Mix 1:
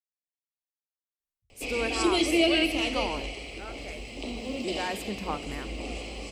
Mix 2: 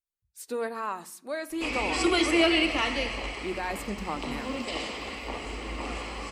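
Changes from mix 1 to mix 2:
speech: entry -1.20 s; background: add high-order bell 1.3 kHz +14 dB 1.3 oct

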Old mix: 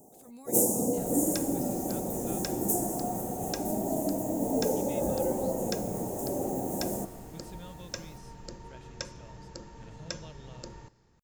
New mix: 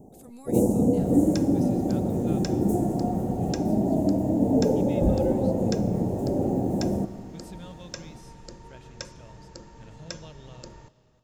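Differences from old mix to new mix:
speech: send on; first sound: add tilt EQ -4.5 dB/octave

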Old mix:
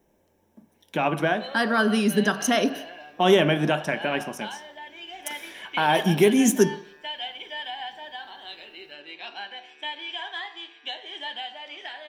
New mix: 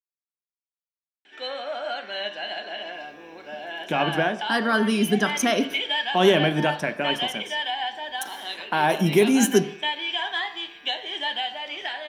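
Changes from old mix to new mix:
speech: entry +2.95 s; background +6.5 dB

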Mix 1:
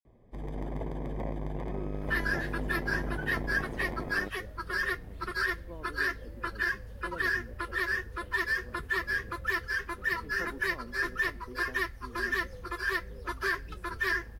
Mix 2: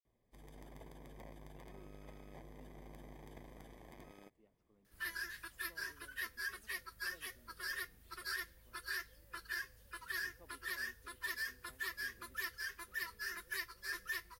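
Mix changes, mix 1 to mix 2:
second sound: entry +2.90 s; master: add pre-emphasis filter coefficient 0.9

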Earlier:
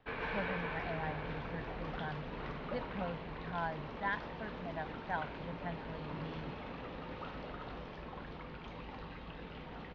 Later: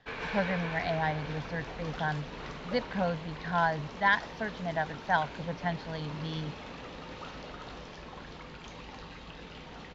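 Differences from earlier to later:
speech +9.5 dB; master: remove distance through air 300 m

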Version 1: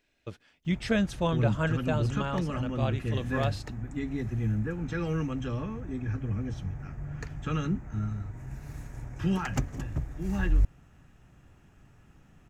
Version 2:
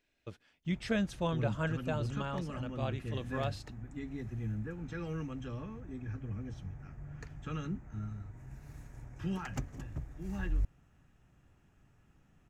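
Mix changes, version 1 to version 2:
speech -5.5 dB; background -8.5 dB

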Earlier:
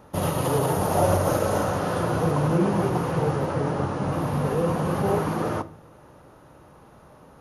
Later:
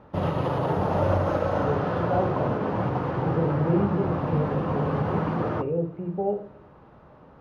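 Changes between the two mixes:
speech: entry +1.15 s; master: add distance through air 290 m

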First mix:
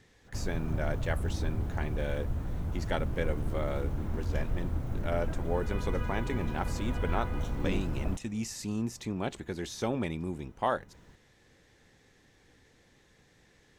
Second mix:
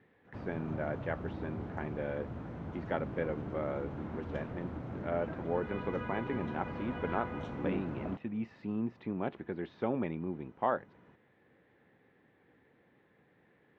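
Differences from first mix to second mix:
speech: add distance through air 400 m; master: add band-pass 160–2700 Hz

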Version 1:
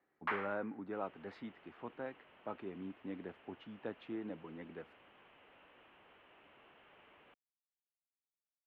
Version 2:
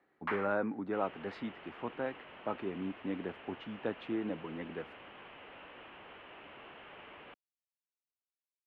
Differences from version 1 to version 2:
speech +7.0 dB; second sound +11.5 dB

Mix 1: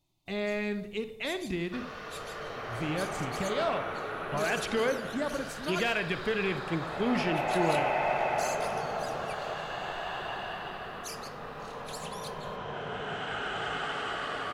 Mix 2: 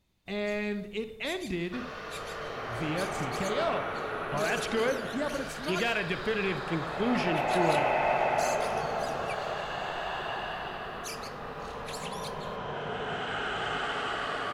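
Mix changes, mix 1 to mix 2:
first sound: remove static phaser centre 320 Hz, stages 8; second sound: send +11.0 dB

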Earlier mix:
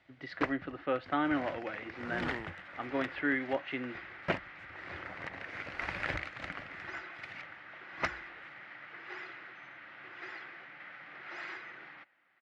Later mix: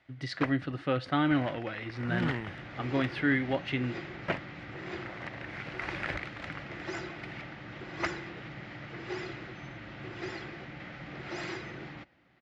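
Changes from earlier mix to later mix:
speech: remove band-pass 320–2300 Hz; second sound: remove band-pass filter 1.6 kHz, Q 1.3; reverb: on, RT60 1.2 s

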